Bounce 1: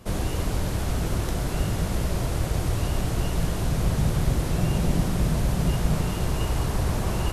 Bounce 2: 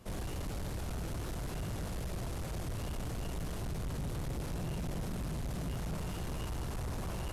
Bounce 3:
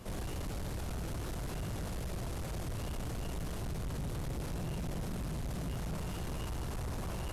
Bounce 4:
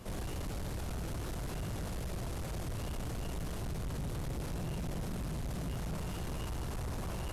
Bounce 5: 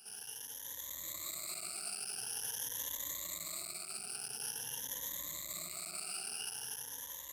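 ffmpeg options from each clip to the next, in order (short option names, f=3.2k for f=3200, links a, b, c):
-af "asoftclip=type=tanh:threshold=-26dB,volume=-8dB"
-af "alimiter=level_in=17dB:limit=-24dB:level=0:latency=1,volume=-17dB,volume=6.5dB"
-af anull
-af "afftfilt=real='re*pow(10,22/40*sin(2*PI*(1.1*log(max(b,1)*sr/1024/100)/log(2)-(0.47)*(pts-256)/sr)))':imag='im*pow(10,22/40*sin(2*PI*(1.1*log(max(b,1)*sr/1024/100)/log(2)-(0.47)*(pts-256)/sr)))':win_size=1024:overlap=0.75,dynaudnorm=f=290:g=7:m=7dB,aderivative,volume=-1dB"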